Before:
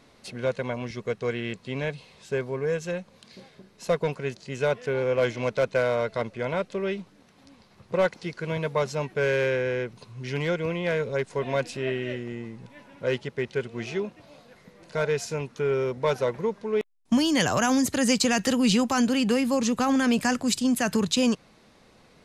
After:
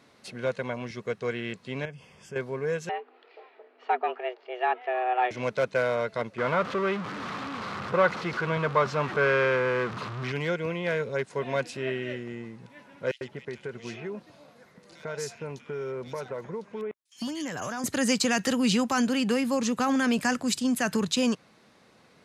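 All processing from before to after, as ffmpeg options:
ffmpeg -i in.wav -filter_complex "[0:a]asettb=1/sr,asplit=3[link_01][link_02][link_03];[link_01]atrim=end=1.854[link_04];[link_02]atrim=start=1.85:end=2.36,asetpts=PTS-STARTPTS,afade=type=in:duration=0.004:curve=qsin,afade=type=out:start_time=0.506:duration=0.004:curve=qsin,lowshelf=frequency=140:gain=11,acompressor=threshold=-42dB:ratio=2:attack=3.2:release=140:knee=1:detection=peak,asuperstop=centerf=4000:order=8:qfactor=3.9[link_05];[link_03]atrim=start=2.356[link_06];[link_04][link_05]acrossfade=duration=0.004:curve1=hsin:curve2=qsin[link_07];[link_07][link_06]acrossfade=duration=0.004:curve1=qsin:curve2=hsin,asettb=1/sr,asplit=3[link_08][link_09][link_10];[link_08]atrim=end=2.894[link_11];[link_09]atrim=start=2.89:end=5.31,asetpts=PTS-STARTPTS,afade=type=in:duration=0.004:curve=qsin,afade=type=out:start_time=2.416:duration=0.004:curve=qsin,lowpass=frequency=2700:width=0.5412,lowpass=frequency=2700:width=1.3066,afreqshift=250[link_12];[link_10]atrim=start=5.306[link_13];[link_11][link_12]acrossfade=duration=0.004:curve1=hsin:curve2=qsin[link_14];[link_14][link_13]acrossfade=duration=0.004:curve1=qsin:curve2=hsin,asettb=1/sr,asplit=3[link_15][link_16][link_17];[link_15]atrim=end=6.384[link_18];[link_16]atrim=start=6.38:end=10.32,asetpts=PTS-STARTPTS,afade=type=in:duration=0.004:curve=qsin,afade=type=out:start_time=3.936:duration=0.004:curve=qsin,aeval=exprs='val(0)+0.5*0.0355*sgn(val(0))':channel_layout=same,lowpass=3800,equalizer=frequency=1200:width_type=o:width=0.48:gain=10[link_19];[link_17]atrim=start=10.316[link_20];[link_18][link_19]acrossfade=duration=0.004:curve1=hsin:curve2=qsin[link_21];[link_21][link_20]acrossfade=duration=0.004:curve1=qsin:curve2=hsin,asettb=1/sr,asplit=3[link_22][link_23][link_24];[link_22]atrim=end=13.114[link_25];[link_23]atrim=start=13.11:end=17.84,asetpts=PTS-STARTPTS,afade=type=in:duration=0.004:curve=qsin,afade=type=out:start_time=4.726:duration=0.004:curve=qsin,acompressor=threshold=-29dB:ratio=4:attack=3.2:release=140:knee=1:detection=peak,acrossover=split=2500[link_26][link_27];[link_26]adelay=100[link_28];[link_28][link_27]amix=inputs=2:normalize=0,atrim=end_sample=208593[link_29];[link_24]atrim=start=17.836[link_30];[link_25][link_29]acrossfade=duration=0.004:curve1=hsin:curve2=qsin[link_31];[link_31][link_30]acrossfade=duration=0.004:curve1=qsin:curve2=hsin,highpass=100,equalizer=frequency=1500:width=1.4:gain=3,volume=-2.5dB" out.wav

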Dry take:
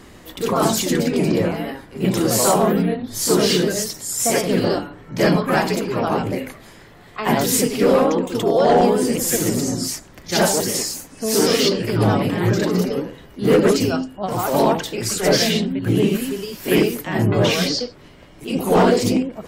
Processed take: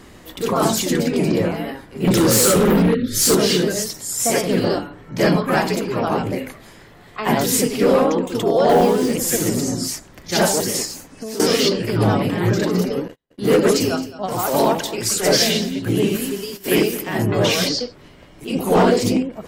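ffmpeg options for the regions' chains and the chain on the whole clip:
ffmpeg -i in.wav -filter_complex "[0:a]asettb=1/sr,asplit=3[link_01][link_02][link_03];[link_01]atrim=end=2.074[link_04];[link_02]atrim=start=2.07:end=3.35,asetpts=PTS-STARTPTS,afade=type=in:duration=0.004:curve=qsin,afade=type=out:start_time=1.276:duration=0.004:curve=qsin,asuperstop=centerf=840:order=20:qfactor=1.3,acontrast=86,volume=11.5dB,asoftclip=hard,volume=-11.5dB[link_05];[link_03]atrim=start=3.346[link_06];[link_04][link_05]acrossfade=duration=0.004:curve1=hsin:curve2=qsin[link_07];[link_07][link_06]acrossfade=duration=0.004:curve1=qsin:curve2=hsin,asettb=1/sr,asplit=3[link_08][link_09][link_10];[link_08]atrim=end=8.694[link_11];[link_09]atrim=start=8.69:end=9.13,asetpts=PTS-STARTPTS,afade=type=in:duration=0.004:curve=qsin,afade=type=out:start_time=0.436:duration=0.004:curve=qsin,acrossover=split=6300[link_12][link_13];[link_13]acompressor=threshold=-46dB:ratio=4:attack=1:release=60[link_14];[link_12][link_14]amix=inputs=2:normalize=0,acrusher=bits=4:mix=0:aa=0.5,asplit=2[link_15][link_16];[link_16]adelay=23,volume=-11dB[link_17];[link_15][link_17]amix=inputs=2:normalize=0,atrim=end_sample=19404[link_18];[link_10]atrim=start=9.126[link_19];[link_11][link_18]acrossfade=duration=0.004:curve1=hsin:curve2=qsin[link_20];[link_20][link_19]acrossfade=duration=0.004:curve1=qsin:curve2=hsin,asettb=1/sr,asplit=3[link_21][link_22][link_23];[link_21]atrim=end=10.854[link_24];[link_22]atrim=start=10.85:end=11.4,asetpts=PTS-STARTPTS,afade=type=in:duration=0.004:curve=qsin,afade=type=out:start_time=0.546:duration=0.004:curve=qsin,equalizer=frequency=11000:width_type=o:width=1.6:gain=-6.5,acompressor=threshold=-25dB:ratio=10:attack=3.2:release=140:knee=1:detection=peak[link_25];[link_23]atrim=start=11.396[link_26];[link_24][link_25]acrossfade=duration=0.004:curve1=hsin:curve2=qsin[link_27];[link_27][link_26]acrossfade=duration=0.004:curve1=qsin:curve2=hsin,asettb=1/sr,asplit=3[link_28][link_29][link_30];[link_28]atrim=end=13.084[link_31];[link_29]atrim=start=13.08:end=17.69,asetpts=PTS-STARTPTS,afade=type=in:duration=0.004:curve=qsin,afade=type=out:start_time=4.606:duration=0.004:curve=qsin,agate=range=-41dB:threshold=-36dB:ratio=16:release=100:detection=peak,bass=frequency=250:gain=-3,treble=frequency=4000:gain=4,aecho=1:1:216:0.158,atrim=end_sample=203301[link_32];[link_30]atrim=start=17.686[link_33];[link_31][link_32]acrossfade=duration=0.004:curve1=hsin:curve2=qsin[link_34];[link_34][link_33]acrossfade=duration=0.004:curve1=qsin:curve2=hsin" out.wav

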